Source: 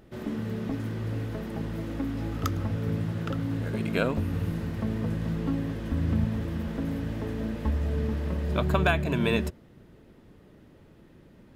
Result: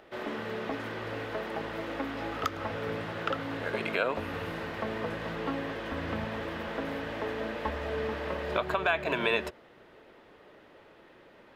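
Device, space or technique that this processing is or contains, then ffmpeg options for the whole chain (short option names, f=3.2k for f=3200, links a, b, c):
DJ mixer with the lows and highs turned down: -filter_complex "[0:a]acrossover=split=440 4200:gain=0.0794 1 0.2[a][b][c];[a][b][c]amix=inputs=3:normalize=0,alimiter=limit=-23.5dB:level=0:latency=1:release=211,volume=8dB"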